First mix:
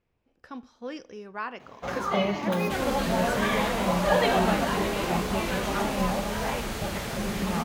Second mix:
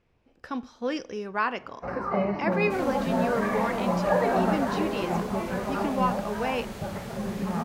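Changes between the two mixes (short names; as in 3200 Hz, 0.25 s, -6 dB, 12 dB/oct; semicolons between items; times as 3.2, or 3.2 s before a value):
speech +7.5 dB; first sound: add running mean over 13 samples; second sound -9.0 dB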